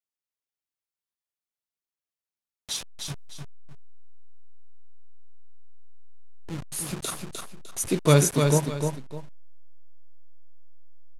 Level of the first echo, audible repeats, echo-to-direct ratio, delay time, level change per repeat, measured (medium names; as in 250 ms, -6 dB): -5.0 dB, 2, -4.5 dB, 303 ms, -10.5 dB